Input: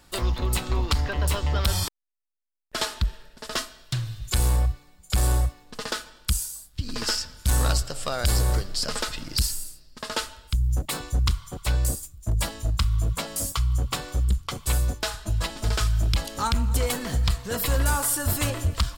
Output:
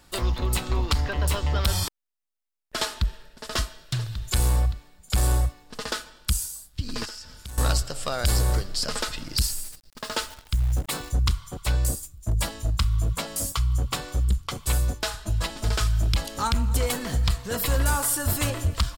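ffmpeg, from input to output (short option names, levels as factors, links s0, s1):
-filter_complex "[0:a]asplit=2[s0][s1];[s1]afade=t=in:st=2.98:d=0.01,afade=t=out:st=3.49:d=0.01,aecho=0:1:570|1140|1710|2280|2850|3420|3990:0.595662|0.327614|0.180188|0.0991033|0.0545068|0.0299787|0.0164883[s2];[s0][s2]amix=inputs=2:normalize=0,asettb=1/sr,asplit=3[s3][s4][s5];[s3]atrim=end=7.054[s6];[s4]atrim=start=7.05:end=7.58,asetpts=PTS-STARTPTS,afade=t=in:d=0.004:c=qsin,afade=t=out:st=0.526:d=0.004:c=qsin,acompressor=threshold=0.0126:ratio=4:attack=3.2:release=140:knee=1:detection=peak[s7];[s5]atrim=start=7.576[s8];[s6][s7]acrossfade=d=0.004:c1=hsin:c2=qsin[s9];[s9][s8]acrossfade=d=0.004:c1=qsin:c2=hsin,asettb=1/sr,asplit=3[s10][s11][s12];[s10]atrim=end=9.454[s13];[s11]atrim=start=9.45:end=11.12,asetpts=PTS-STARTPTS,afade=t=in:d=0.004:c=qsin,afade=t=out:st=1.666:d=0.004:c=qsin,acrusher=bits=8:dc=4:mix=0:aa=0.000001[s14];[s12]atrim=start=11.116[s15];[s13][s14]acrossfade=d=0.004:c1=hsin:c2=qsin[s16];[s16][s15]acrossfade=d=0.004:c1=qsin:c2=hsin"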